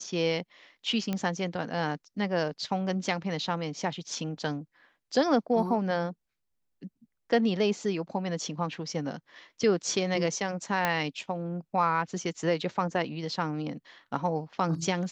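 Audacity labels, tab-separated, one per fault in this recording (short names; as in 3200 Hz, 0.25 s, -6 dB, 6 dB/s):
1.130000	1.130000	pop -17 dBFS
10.850000	10.850000	pop -11 dBFS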